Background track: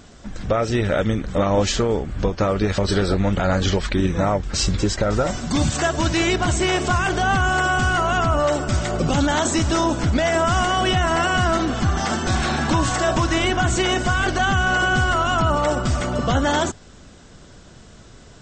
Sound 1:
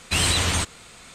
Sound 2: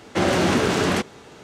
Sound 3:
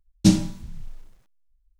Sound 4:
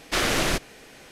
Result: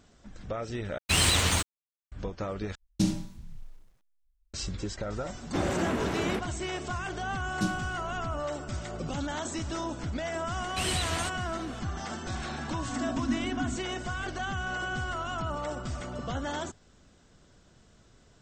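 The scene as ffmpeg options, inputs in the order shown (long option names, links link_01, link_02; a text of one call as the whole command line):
ffmpeg -i bed.wav -i cue0.wav -i cue1.wav -i cue2.wav -filter_complex "[1:a]asplit=2[link_01][link_02];[3:a]asplit=2[link_03][link_04];[2:a]asplit=2[link_05][link_06];[0:a]volume=-14.5dB[link_07];[link_01]aeval=exprs='sgn(val(0))*max(abs(val(0))-0.0188,0)':channel_layout=same[link_08];[link_03]alimiter=level_in=6.5dB:limit=-1dB:release=50:level=0:latency=1[link_09];[link_05]equalizer=frequency=5800:width=0.84:gain=-13.5[link_10];[link_06]asuperpass=centerf=260:order=20:qfactor=3.6[link_11];[link_07]asplit=3[link_12][link_13][link_14];[link_12]atrim=end=0.984[link_15];[link_08]atrim=end=1.14,asetpts=PTS-STARTPTS,volume=-1dB[link_16];[link_13]atrim=start=2.116:end=2.754[link_17];[link_09]atrim=end=1.79,asetpts=PTS-STARTPTS,volume=-13.5dB[link_18];[link_14]atrim=start=4.536[link_19];[link_10]atrim=end=1.43,asetpts=PTS-STARTPTS,volume=-9.5dB,afade=type=in:duration=0.004:curve=hsin,afade=type=out:start_time=1.426:duration=0.004:curve=hsin,adelay=5380[link_20];[link_04]atrim=end=1.79,asetpts=PTS-STARTPTS,volume=-14.5dB,afade=type=in:duration=0.004:curve=hsin,afade=type=out:start_time=1.786:duration=0.004:curve=hsin,adelay=7360[link_21];[link_02]atrim=end=1.14,asetpts=PTS-STARTPTS,volume=-10.5dB,afade=type=in:duration=0.004:curve=hsin,afade=type=out:start_time=1.136:duration=0.004:curve=hsin,adelay=10650[link_22];[link_11]atrim=end=1.43,asetpts=PTS-STARTPTS,volume=-3.5dB,afade=type=in:duration=0.004:curve=hsin,afade=type=out:start_time=1.426:duration=0.004:curve=hsin,adelay=12710[link_23];[link_15][link_16]acrossfade=duration=0.004:curve1=hsin:curve2=hsin[link_24];[link_24][link_17]acrossfade=duration=0.004:curve1=hsin:curve2=hsin[link_25];[link_25][link_18]acrossfade=duration=0.004:curve1=hsin:curve2=hsin[link_26];[link_26][link_19]acrossfade=duration=0.004:curve1=hsin:curve2=hsin[link_27];[link_27][link_20][link_21][link_22][link_23]amix=inputs=5:normalize=0" out.wav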